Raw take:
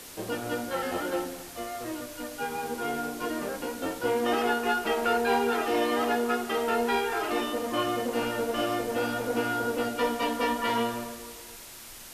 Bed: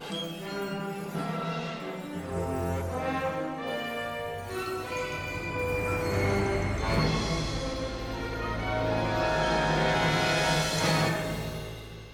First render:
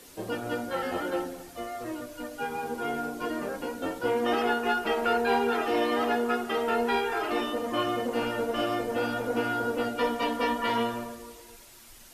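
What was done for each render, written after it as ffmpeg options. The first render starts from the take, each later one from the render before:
-af "afftdn=nr=8:nf=-45"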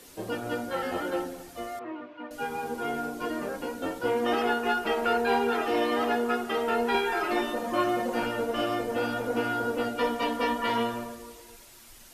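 -filter_complex "[0:a]asettb=1/sr,asplit=3[a][b][c];[a]atrim=end=1.794[d];[b]atrim=start=1.79:end=2.31,asetpts=PTS-STARTPTS,afade=t=in:d=0.004:c=qsin,afade=t=out:st=0.516:d=0.004:c=qsin,highpass=260,equalizer=f=540:t=q:w=4:g=-8,equalizer=f=970:t=q:w=4:g=4,equalizer=f=1.6k:t=q:w=4:g=-4,lowpass=f=2.7k:w=0.5412,lowpass=f=2.7k:w=1.3066[e];[c]atrim=start=2.306[f];[d][e]acrossfade=d=0.004:c1=hsin:c2=qsin[g];[g][f]acrossfade=d=0.004:c1=qsin:c2=hsin,asettb=1/sr,asplit=3[h][i][j];[h]atrim=end=6.944[k];[i]atrim=start=6.94:end=8.26,asetpts=PTS-STARTPTS,afade=t=in:d=0.004:c=qsin,afade=t=out:st=1.316:d=0.004:c=qsin,aecho=1:1:5.5:0.65,atrim=end_sample=58212[l];[j]atrim=start=8.256[m];[k][l]acrossfade=d=0.004:c1=hsin:c2=qsin[n];[n][m]acrossfade=d=0.004:c1=qsin:c2=hsin"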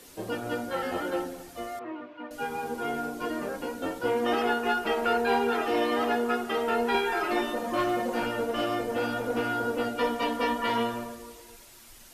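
-filter_complex "[0:a]asplit=3[a][b][c];[a]afade=t=out:st=7.49:d=0.02[d];[b]asoftclip=type=hard:threshold=-21.5dB,afade=t=in:st=7.49:d=0.02,afade=t=out:st=9.51:d=0.02[e];[c]afade=t=in:st=9.51:d=0.02[f];[d][e][f]amix=inputs=3:normalize=0"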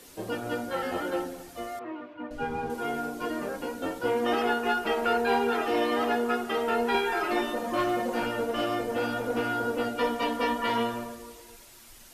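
-filter_complex "[0:a]asettb=1/sr,asplit=3[a][b][c];[a]atrim=end=2.144[d];[b]atrim=start=2.14:end=2.7,asetpts=PTS-STARTPTS,afade=t=in:d=0.004:c=qsin,afade=t=out:st=0.556:d=0.004:c=qsin,aemphasis=mode=reproduction:type=bsi[e];[c]atrim=start=2.696[f];[d][e]acrossfade=d=0.004:c1=hsin:c2=qsin[g];[g][f]acrossfade=d=0.004:c1=qsin:c2=hsin"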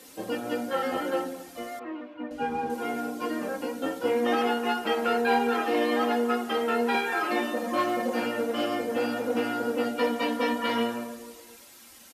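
-af "highpass=110,aecho=1:1:3.8:0.53"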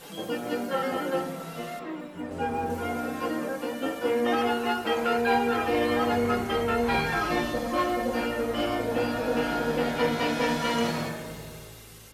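-filter_complex "[1:a]volume=-7.5dB[a];[0:a][a]amix=inputs=2:normalize=0"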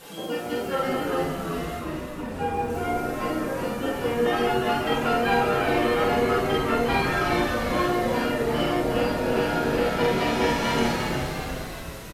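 -filter_complex "[0:a]asplit=2[a][b];[b]adelay=48,volume=-3dB[c];[a][c]amix=inputs=2:normalize=0,asplit=9[d][e][f][g][h][i][j][k][l];[e]adelay=357,afreqshift=-100,volume=-6dB[m];[f]adelay=714,afreqshift=-200,volume=-10.4dB[n];[g]adelay=1071,afreqshift=-300,volume=-14.9dB[o];[h]adelay=1428,afreqshift=-400,volume=-19.3dB[p];[i]adelay=1785,afreqshift=-500,volume=-23.7dB[q];[j]adelay=2142,afreqshift=-600,volume=-28.2dB[r];[k]adelay=2499,afreqshift=-700,volume=-32.6dB[s];[l]adelay=2856,afreqshift=-800,volume=-37.1dB[t];[d][m][n][o][p][q][r][s][t]amix=inputs=9:normalize=0"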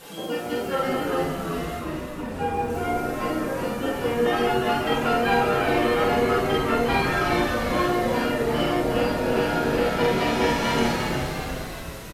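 -af "volume=1dB"

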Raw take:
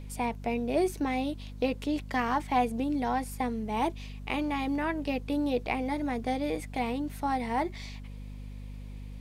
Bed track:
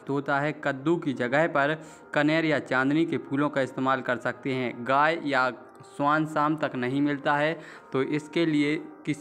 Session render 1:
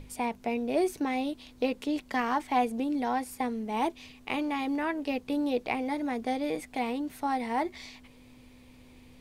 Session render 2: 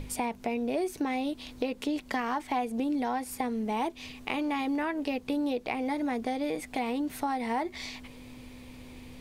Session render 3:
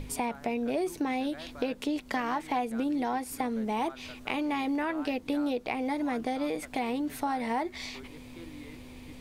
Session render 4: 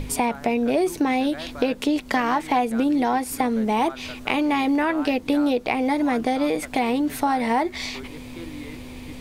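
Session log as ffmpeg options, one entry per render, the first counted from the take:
-af "bandreject=f=50:t=h:w=6,bandreject=f=100:t=h:w=6,bandreject=f=150:t=h:w=6,bandreject=f=200:t=h:w=6"
-filter_complex "[0:a]asplit=2[a][b];[b]alimiter=level_in=1.5dB:limit=-24dB:level=0:latency=1:release=358,volume=-1.5dB,volume=2dB[c];[a][c]amix=inputs=2:normalize=0,acompressor=threshold=-29dB:ratio=3"
-filter_complex "[1:a]volume=-23.5dB[a];[0:a][a]amix=inputs=2:normalize=0"
-af "volume=9dB"

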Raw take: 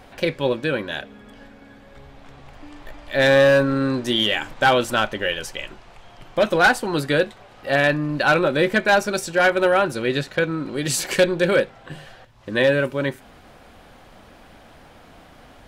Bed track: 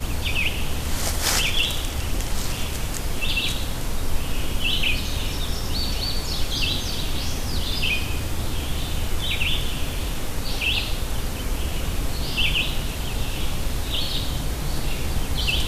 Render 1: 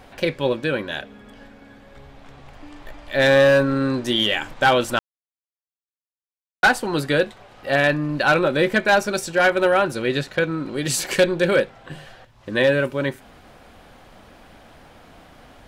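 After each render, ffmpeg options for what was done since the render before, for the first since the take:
-filter_complex "[0:a]asplit=3[a][b][c];[a]atrim=end=4.99,asetpts=PTS-STARTPTS,afade=t=out:st=4.986:d=0.004:c=hsin[d];[b]atrim=start=4.99:end=6.63,asetpts=PTS-STARTPTS,volume=0[e];[c]atrim=start=6.63,asetpts=PTS-STARTPTS,afade=t=in:d=0.004:c=hsin[f];[d][e][f]concat=n=3:v=0:a=1"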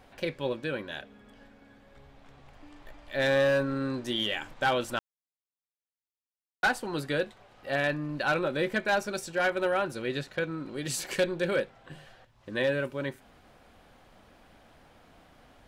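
-af "volume=-10dB"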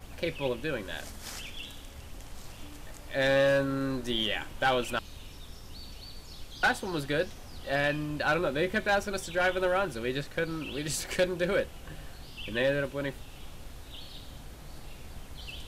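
-filter_complex "[1:a]volume=-20dB[a];[0:a][a]amix=inputs=2:normalize=0"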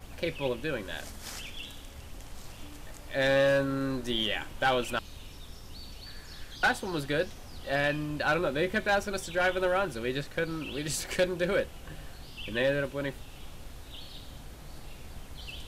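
-filter_complex "[0:a]asettb=1/sr,asplit=3[a][b][c];[a]atrim=end=6.064[d];[b]atrim=start=6.06:end=6.56,asetpts=PTS-STARTPTS,afade=t=in:d=0.004:c=qsin,afade=t=out:st=0.496:d=0.004:c=qsin,equalizer=f=1.7k:w=3.7:g=14.5[e];[c]atrim=start=6.556[f];[d][e]acrossfade=d=0.004:c1=hsin:c2=qsin[g];[g][f]acrossfade=d=0.004:c1=qsin:c2=hsin"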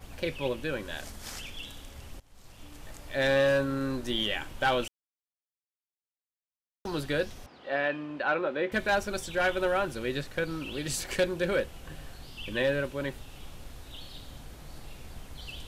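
-filter_complex "[0:a]asettb=1/sr,asplit=3[a][b][c];[a]atrim=end=7.464[d];[b]atrim=start=7.46:end=8.72,asetpts=PTS-STARTPTS,afade=t=in:d=0.004:c=qsin,afade=t=out:st=1.256:d=0.004:c=qsin,highpass=280,lowpass=2.5k[e];[c]atrim=start=8.716[f];[d][e]acrossfade=d=0.004:c1=hsin:c2=qsin[g];[g][f]acrossfade=d=0.004:c1=qsin:c2=hsin,asplit=4[h][i][j][k];[h]atrim=end=2.2,asetpts=PTS-STARTPTS,afade=t=out:st=2.196:d=0.004:c=hsin:silence=0.0707946[l];[i]atrim=start=2.2:end=4.88,asetpts=PTS-STARTPTS,afade=t=in:d=0.71:silence=0.0707946,afade=t=out:st=2.676:d=0.004:c=hsin[m];[j]atrim=start=4.88:end=6.85,asetpts=PTS-STARTPTS,volume=0[n];[k]atrim=start=6.85,asetpts=PTS-STARTPTS,afade=t=in:d=0.004:c=hsin[o];[l][m][n][o]concat=n=4:v=0:a=1"

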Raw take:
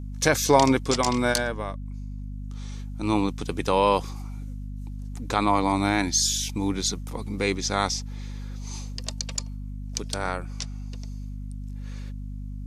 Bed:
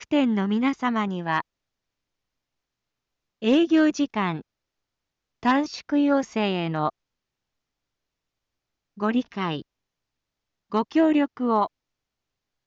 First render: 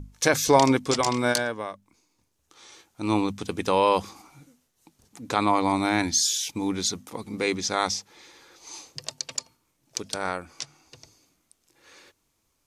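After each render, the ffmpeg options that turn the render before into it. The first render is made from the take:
-af "bandreject=f=50:t=h:w=6,bandreject=f=100:t=h:w=6,bandreject=f=150:t=h:w=6,bandreject=f=200:t=h:w=6,bandreject=f=250:t=h:w=6"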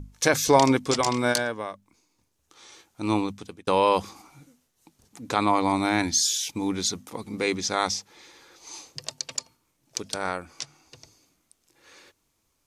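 -filter_complex "[0:a]asplit=2[a][b];[a]atrim=end=3.67,asetpts=PTS-STARTPTS,afade=t=out:st=3.11:d=0.56[c];[b]atrim=start=3.67,asetpts=PTS-STARTPTS,afade=t=in:d=0.004:c=hsin[d];[c][d]concat=n=2:v=0:a=1"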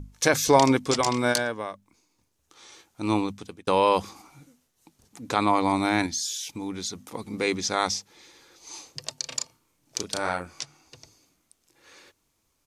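-filter_complex "[0:a]asettb=1/sr,asplit=3[a][b][c];[a]atrim=end=6.064[d];[b]atrim=start=6.06:end=7.14,asetpts=PTS-STARTPTS,afade=t=in:d=0.004:c=qsin,afade=t=out:st=1.076:d=0.004:c=qsin,acompressor=threshold=-39dB:ratio=1.5:attack=3.2:release=140:knee=1:detection=peak[e];[c]atrim=start=7.136[f];[d][e]acrossfade=d=0.004:c1=hsin:c2=qsin[g];[g][f]acrossfade=d=0.004:c1=qsin:c2=hsin,asettb=1/sr,asplit=3[h][i][j];[h]atrim=end=7.984[k];[i]atrim=start=7.98:end=8.7,asetpts=PTS-STARTPTS,afade=t=in:d=0.004:c=qsin,afade=t=out:st=0.716:d=0.004:c=qsin,equalizer=f=1.1k:t=o:w=2.7:g=-4[l];[j]atrim=start=8.696[m];[k][l]acrossfade=d=0.004:c1=hsin:c2=qsin[n];[n][m]acrossfade=d=0.004:c1=qsin:c2=hsin,asplit=3[o][p][q];[o]afade=t=out:st=9.23:d=0.02[r];[p]asplit=2[s][t];[t]adelay=34,volume=-4dB[u];[s][u]amix=inputs=2:normalize=0,afade=t=in:st=9.23:d=0.02,afade=t=out:st=10.62:d=0.02[v];[q]afade=t=in:st=10.62:d=0.02[w];[r][v][w]amix=inputs=3:normalize=0"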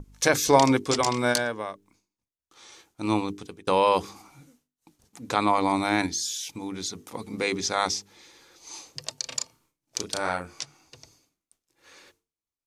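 -af "agate=range=-33dB:threshold=-57dB:ratio=3:detection=peak,bandreject=f=50:t=h:w=6,bandreject=f=100:t=h:w=6,bandreject=f=150:t=h:w=6,bandreject=f=200:t=h:w=6,bandreject=f=250:t=h:w=6,bandreject=f=300:t=h:w=6,bandreject=f=350:t=h:w=6,bandreject=f=400:t=h:w=6,bandreject=f=450:t=h:w=6"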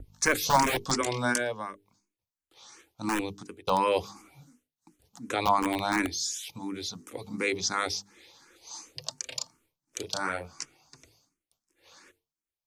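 -filter_complex "[0:a]acrossover=split=440|3700[a][b][c];[a]aeval=exprs='(mod(11.2*val(0)+1,2)-1)/11.2':c=same[d];[d][b][c]amix=inputs=3:normalize=0,asplit=2[e][f];[f]afreqshift=2.8[g];[e][g]amix=inputs=2:normalize=1"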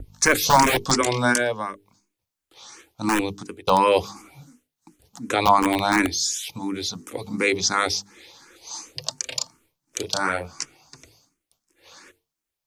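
-af "volume=7.5dB,alimiter=limit=-3dB:level=0:latency=1"

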